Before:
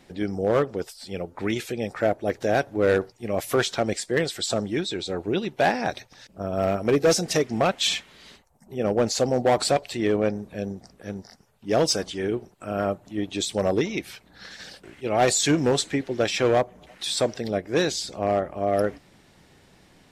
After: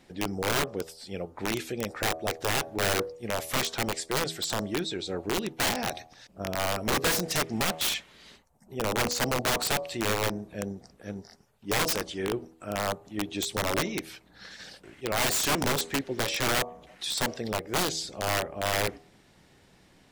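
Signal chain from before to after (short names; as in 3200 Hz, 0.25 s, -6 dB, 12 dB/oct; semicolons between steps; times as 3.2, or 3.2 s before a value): de-hum 80.81 Hz, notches 15; wrapped overs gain 17 dB; gain -3.5 dB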